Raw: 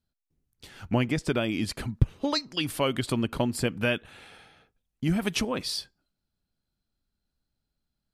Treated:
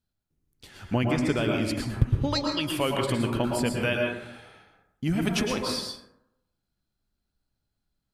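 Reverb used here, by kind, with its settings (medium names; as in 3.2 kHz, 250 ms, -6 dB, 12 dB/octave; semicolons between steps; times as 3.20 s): plate-style reverb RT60 0.82 s, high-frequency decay 0.4×, pre-delay 100 ms, DRR 0.5 dB; trim -1 dB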